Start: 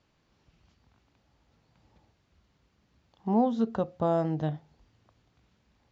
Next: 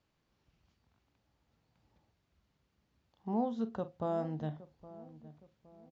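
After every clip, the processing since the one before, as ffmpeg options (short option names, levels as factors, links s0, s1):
-filter_complex "[0:a]asplit=2[s0][s1];[s1]adelay=45,volume=0.211[s2];[s0][s2]amix=inputs=2:normalize=0,asplit=2[s3][s4];[s4]adelay=816,lowpass=f=900:p=1,volume=0.158,asplit=2[s5][s6];[s6]adelay=816,lowpass=f=900:p=1,volume=0.46,asplit=2[s7][s8];[s8]adelay=816,lowpass=f=900:p=1,volume=0.46,asplit=2[s9][s10];[s10]adelay=816,lowpass=f=900:p=1,volume=0.46[s11];[s3][s5][s7][s9][s11]amix=inputs=5:normalize=0,volume=0.376"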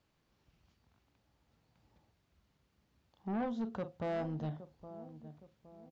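-af "asoftclip=type=tanh:threshold=0.0211,volume=1.26"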